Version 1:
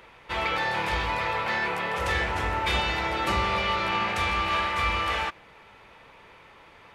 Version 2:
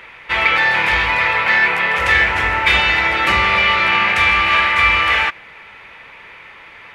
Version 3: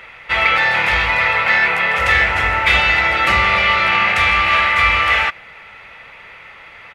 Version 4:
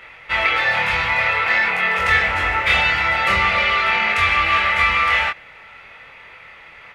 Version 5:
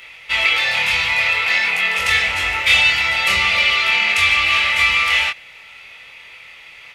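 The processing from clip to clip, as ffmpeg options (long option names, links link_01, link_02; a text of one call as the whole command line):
ffmpeg -i in.wav -af "equalizer=frequency=2100:width=1:gain=12.5,volume=4.5dB" out.wav
ffmpeg -i in.wav -af "aecho=1:1:1.5:0.31" out.wav
ffmpeg -i in.wav -af "flanger=delay=22.5:depth=3.8:speed=0.5" out.wav
ffmpeg -i in.wav -af "aexciter=amount=4.8:drive=4.6:freq=2300,volume=-5dB" out.wav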